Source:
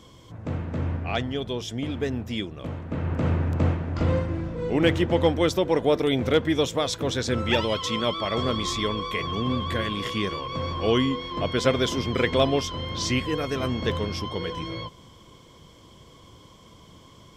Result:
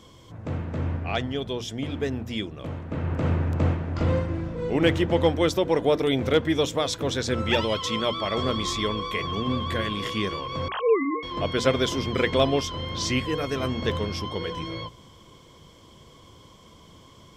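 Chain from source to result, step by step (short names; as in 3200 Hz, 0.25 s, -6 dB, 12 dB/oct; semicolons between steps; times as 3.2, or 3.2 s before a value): 10.68–11.23 sine-wave speech; notches 60/120/180/240/300 Hz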